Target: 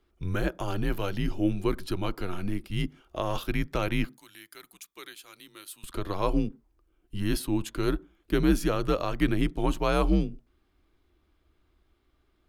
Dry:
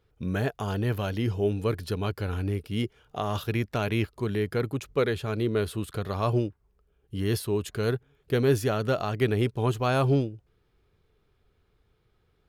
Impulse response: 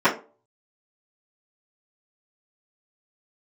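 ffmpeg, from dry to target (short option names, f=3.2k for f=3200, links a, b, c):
-filter_complex "[0:a]afreqshift=-87,asettb=1/sr,asplit=3[a][b][c];[a]atrim=end=4.094[d];[b]atrim=start=4.09:end=5.84,asetpts=PTS-STARTPTS,afade=t=in:d=0.004:c=qsin,afade=t=out:st=1.746:d=0.004:c=qsin,aderivative[e];[c]atrim=start=5.836[f];[d][e]acrossfade=d=0.004:c1=hsin:c2=qsin[g];[g][f]acrossfade=d=0.004:c1=qsin:c2=hsin,asplit=2[h][i];[1:a]atrim=start_sample=2205,afade=t=out:st=0.15:d=0.01,atrim=end_sample=7056,asetrate=28224,aresample=44100[j];[i][j]afir=irnorm=-1:irlink=0,volume=-41.5dB[k];[h][k]amix=inputs=2:normalize=0"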